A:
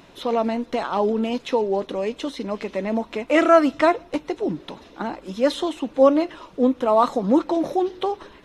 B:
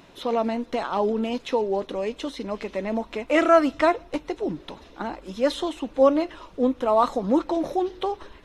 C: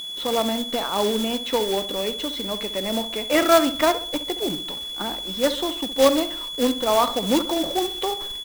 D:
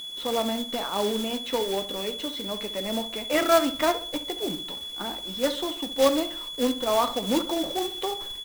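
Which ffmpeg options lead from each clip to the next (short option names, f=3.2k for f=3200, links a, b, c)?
-af "asubboost=boost=3:cutoff=84,volume=-2dB"
-filter_complex "[0:a]aeval=exprs='val(0)+0.0316*sin(2*PI*3400*n/s)':c=same,acrusher=bits=2:mode=log:mix=0:aa=0.000001,asplit=2[a][b];[b]adelay=67,lowpass=f=1.9k:p=1,volume=-12dB,asplit=2[c][d];[d]adelay=67,lowpass=f=1.9k:p=1,volume=0.42,asplit=2[e][f];[f]adelay=67,lowpass=f=1.9k:p=1,volume=0.42,asplit=2[g][h];[h]adelay=67,lowpass=f=1.9k:p=1,volume=0.42[i];[a][c][e][g][i]amix=inputs=5:normalize=0"
-af "flanger=delay=7.5:depth=4.5:regen=-66:speed=0.29:shape=triangular"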